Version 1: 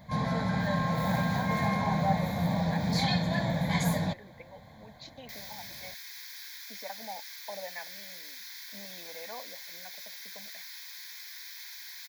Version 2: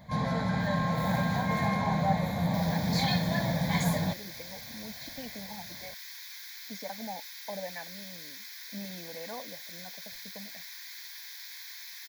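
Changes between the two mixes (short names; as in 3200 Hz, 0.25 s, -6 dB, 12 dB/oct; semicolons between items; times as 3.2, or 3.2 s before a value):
speech: remove weighting filter A; second sound: entry -2.75 s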